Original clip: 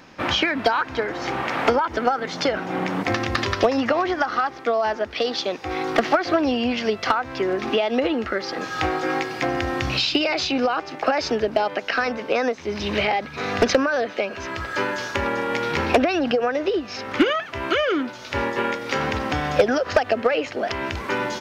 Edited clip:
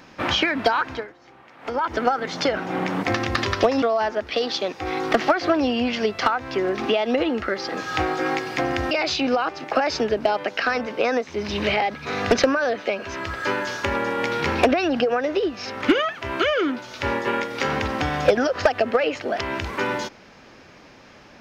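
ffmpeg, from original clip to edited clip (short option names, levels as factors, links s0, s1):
-filter_complex "[0:a]asplit=5[s0][s1][s2][s3][s4];[s0]atrim=end=1.18,asetpts=PTS-STARTPTS,afade=t=out:st=0.91:d=0.27:c=qua:silence=0.0668344[s5];[s1]atrim=start=1.18:end=1.57,asetpts=PTS-STARTPTS,volume=0.0668[s6];[s2]atrim=start=1.57:end=3.822,asetpts=PTS-STARTPTS,afade=t=in:d=0.27:c=qua:silence=0.0668344[s7];[s3]atrim=start=4.658:end=9.752[s8];[s4]atrim=start=10.218[s9];[s5][s6][s7]concat=n=3:v=0:a=1[s10];[s10][s8]acrossfade=d=0.004:c1=hsin:c2=hsin[s11];[s11][s9]acrossfade=d=0.004:c1=hsin:c2=hsin"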